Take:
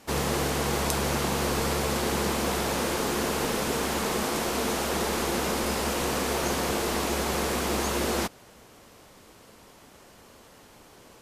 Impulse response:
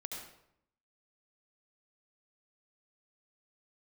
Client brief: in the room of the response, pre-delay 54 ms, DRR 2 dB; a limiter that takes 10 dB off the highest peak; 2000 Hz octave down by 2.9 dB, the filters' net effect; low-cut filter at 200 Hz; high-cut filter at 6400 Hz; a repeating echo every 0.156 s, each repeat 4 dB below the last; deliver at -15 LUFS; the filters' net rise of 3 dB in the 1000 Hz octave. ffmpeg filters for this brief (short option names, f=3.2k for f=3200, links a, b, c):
-filter_complex "[0:a]highpass=200,lowpass=6.4k,equalizer=f=1k:t=o:g=5,equalizer=f=2k:t=o:g=-5.5,alimiter=limit=-19.5dB:level=0:latency=1,aecho=1:1:156|312|468|624|780|936|1092|1248|1404:0.631|0.398|0.25|0.158|0.0994|0.0626|0.0394|0.0249|0.0157,asplit=2[a][b];[1:a]atrim=start_sample=2205,adelay=54[c];[b][c]afir=irnorm=-1:irlink=0,volume=-1dB[d];[a][d]amix=inputs=2:normalize=0,volume=9.5dB"